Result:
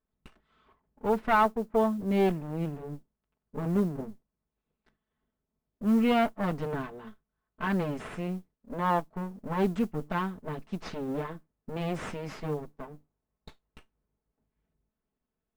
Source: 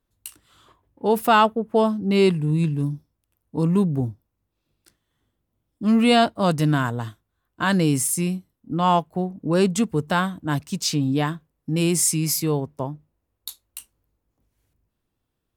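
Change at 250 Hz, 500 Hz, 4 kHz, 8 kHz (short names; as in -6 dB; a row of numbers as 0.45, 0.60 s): -8.5 dB, -7.5 dB, -16.0 dB, under -25 dB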